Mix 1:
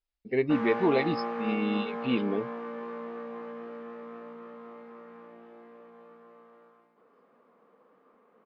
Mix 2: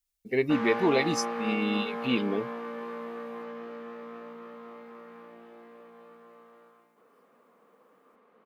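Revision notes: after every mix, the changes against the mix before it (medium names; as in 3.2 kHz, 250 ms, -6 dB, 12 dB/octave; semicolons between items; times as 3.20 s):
speech: remove brick-wall FIR low-pass 5.3 kHz; master: add treble shelf 2.9 kHz +9.5 dB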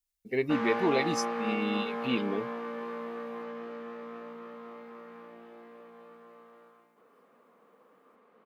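speech -3.0 dB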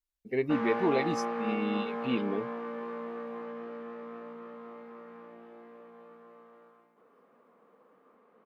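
master: add treble shelf 2.9 kHz -9.5 dB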